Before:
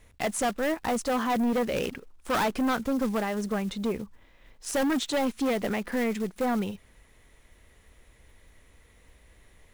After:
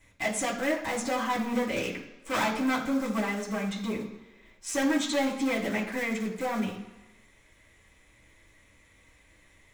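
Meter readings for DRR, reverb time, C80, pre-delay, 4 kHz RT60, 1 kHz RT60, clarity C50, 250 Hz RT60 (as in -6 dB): -6.0 dB, 1.1 s, 10.5 dB, 3 ms, 1.0 s, 1.1 s, 8.0 dB, 1.0 s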